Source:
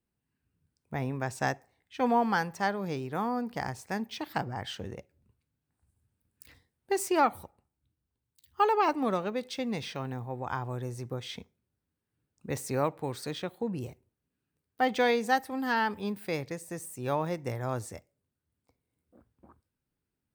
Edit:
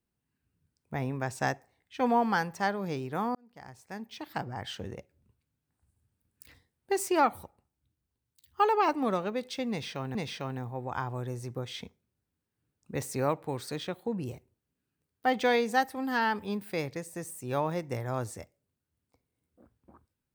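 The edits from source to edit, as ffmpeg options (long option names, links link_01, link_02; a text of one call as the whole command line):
ffmpeg -i in.wav -filter_complex "[0:a]asplit=3[link_01][link_02][link_03];[link_01]atrim=end=3.35,asetpts=PTS-STARTPTS,afade=type=out:start_time=3.346:duration=0.004:curve=hsin[link_04];[link_02]atrim=start=3.35:end=10.152,asetpts=PTS-STARTPTS,afade=type=in:duration=1.45[link_05];[link_03]atrim=start=9.698[link_06];[link_04][link_05]concat=n=2:v=0:a=1[link_07];[link_07][link_06]acrossfade=duration=0.004:curve1=hsin:curve2=hsin" out.wav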